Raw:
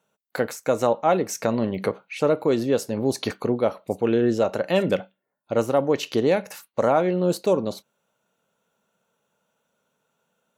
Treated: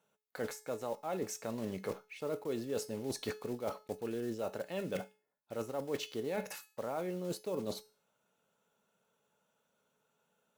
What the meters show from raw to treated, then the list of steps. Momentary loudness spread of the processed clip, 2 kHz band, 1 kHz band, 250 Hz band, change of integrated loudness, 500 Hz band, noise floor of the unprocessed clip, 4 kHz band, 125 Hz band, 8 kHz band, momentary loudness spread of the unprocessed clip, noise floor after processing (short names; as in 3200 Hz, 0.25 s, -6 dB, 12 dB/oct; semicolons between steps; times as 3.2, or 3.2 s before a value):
5 LU, -14.5 dB, -17.5 dB, -16.5 dB, -16.0 dB, -16.5 dB, -79 dBFS, -12.0 dB, -16.0 dB, -10.0 dB, 8 LU, -80 dBFS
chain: block floating point 5-bit; reverse; compressor 6:1, threshold -30 dBFS, peak gain reduction 15 dB; reverse; resonator 430 Hz, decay 0.41 s, mix 70%; gain +4.5 dB